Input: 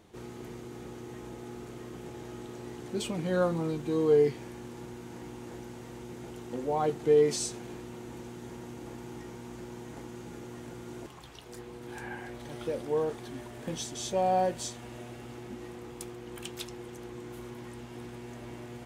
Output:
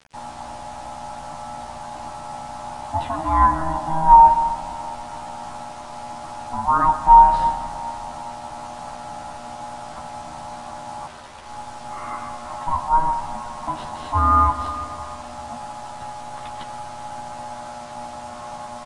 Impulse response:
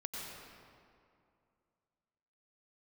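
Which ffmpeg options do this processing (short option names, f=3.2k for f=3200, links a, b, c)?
-filter_complex "[0:a]lowshelf=f=150:g=-2.5,aeval=exprs='val(0)*sin(2*PI*480*n/s)':c=same,acrossover=split=3300[a][b];[a]acontrast=31[c];[b]acrusher=samples=38:mix=1:aa=0.000001[d];[c][d]amix=inputs=2:normalize=0,equalizer=f=160:t=o:w=0.67:g=-6,equalizer=f=400:t=o:w=0.67:g=-12,equalizer=f=1k:t=o:w=0.67:g=8,equalizer=f=2.5k:t=o:w=0.67:g=-8,equalizer=f=6.3k:t=o:w=0.67:g=-7,acrusher=bits=7:mix=0:aa=0.000001,asplit=2[e][f];[f]adelay=13,volume=-3dB[g];[e][g]amix=inputs=2:normalize=0,asplit=2[h][i];[1:a]atrim=start_sample=2205[j];[i][j]afir=irnorm=-1:irlink=0,volume=-6.5dB[k];[h][k]amix=inputs=2:normalize=0,aresample=22050,aresample=44100,volume=2dB"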